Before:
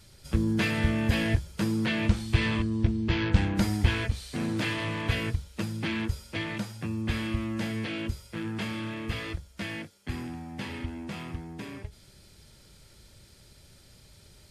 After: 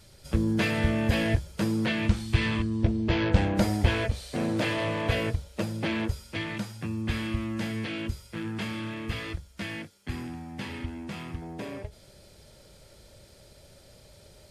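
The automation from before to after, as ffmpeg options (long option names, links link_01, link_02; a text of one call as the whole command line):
ffmpeg -i in.wav -af "asetnsamples=nb_out_samples=441:pad=0,asendcmd='1.92 equalizer g -1;2.83 equalizer g 11;6.12 equalizer g -0.5;11.42 equalizer g 11.5',equalizer=frequency=580:width_type=o:width=0.87:gain=5.5" out.wav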